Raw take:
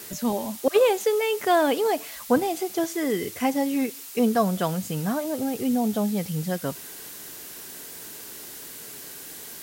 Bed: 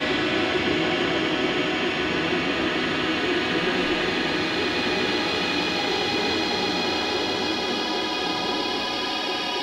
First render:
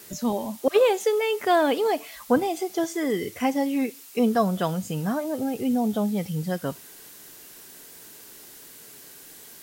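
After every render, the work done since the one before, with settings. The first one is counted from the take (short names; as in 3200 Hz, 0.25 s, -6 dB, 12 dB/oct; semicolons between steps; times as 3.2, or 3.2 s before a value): noise print and reduce 6 dB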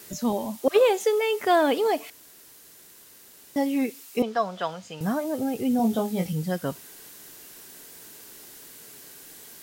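2.1–3.56 room tone; 4.22–5.01 three-band isolator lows -15 dB, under 520 Hz, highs -23 dB, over 6100 Hz; 5.77–6.33 doubler 22 ms -4 dB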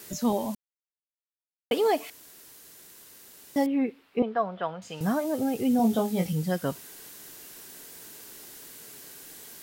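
0.55–1.71 mute; 3.66–4.82 air absorption 450 m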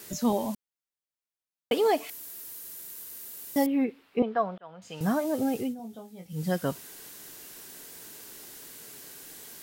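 2.09–3.85 bell 14000 Hz +11 dB 1.1 oct; 4.58–5.03 fade in; 5.57–6.47 dip -18.5 dB, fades 0.18 s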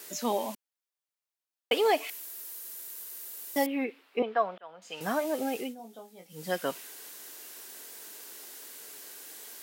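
HPF 370 Hz 12 dB/oct; dynamic EQ 2500 Hz, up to +6 dB, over -53 dBFS, Q 1.4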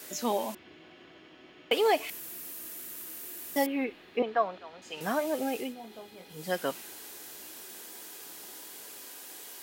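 add bed -30.5 dB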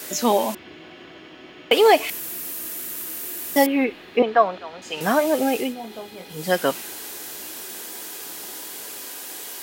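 gain +10.5 dB; limiter -3 dBFS, peak gain reduction 1.5 dB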